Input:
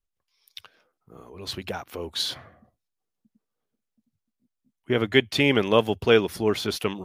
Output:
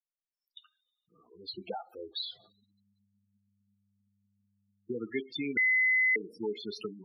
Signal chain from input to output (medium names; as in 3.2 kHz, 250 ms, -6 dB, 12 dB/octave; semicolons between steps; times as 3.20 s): expander on every frequency bin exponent 1.5; 1.31–1.81 s: peaking EQ 590 Hz +6 dB 2.2 oct; compression 2.5:1, threshold -33 dBFS, peak gain reduction 13 dB; reverberation, pre-delay 3 ms, DRR 10 dB; 2.32–4.93 s: mains buzz 100 Hz, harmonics 30, -62 dBFS -8 dB/octave; spectral gate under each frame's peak -10 dB strong; three-band isolator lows -21 dB, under 170 Hz, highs -20 dB, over 5.5 kHz; 5.57–6.16 s: bleep 2.03 kHz -22.5 dBFS